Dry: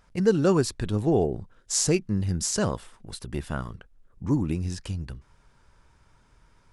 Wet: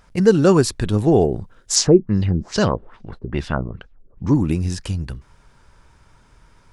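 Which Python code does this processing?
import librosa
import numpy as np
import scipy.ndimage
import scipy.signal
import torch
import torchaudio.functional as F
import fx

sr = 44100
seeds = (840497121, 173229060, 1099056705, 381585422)

y = fx.filter_lfo_lowpass(x, sr, shape='sine', hz=2.4, low_hz=350.0, high_hz=5600.0, q=1.9, at=(1.75, 4.34), fade=0.02)
y = F.gain(torch.from_numpy(y), 7.5).numpy()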